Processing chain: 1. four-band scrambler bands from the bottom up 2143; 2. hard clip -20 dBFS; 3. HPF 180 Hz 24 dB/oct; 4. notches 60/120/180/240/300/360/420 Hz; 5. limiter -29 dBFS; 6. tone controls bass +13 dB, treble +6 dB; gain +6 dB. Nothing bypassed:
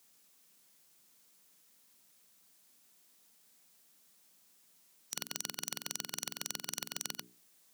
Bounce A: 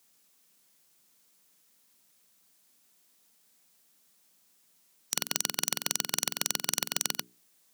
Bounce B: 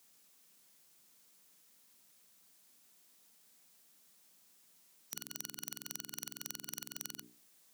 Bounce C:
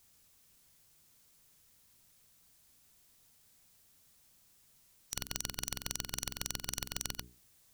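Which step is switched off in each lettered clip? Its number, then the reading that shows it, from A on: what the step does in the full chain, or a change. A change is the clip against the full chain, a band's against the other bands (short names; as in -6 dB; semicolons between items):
5, mean gain reduction 5.0 dB; 2, distortion -2 dB; 3, 125 Hz band +9.5 dB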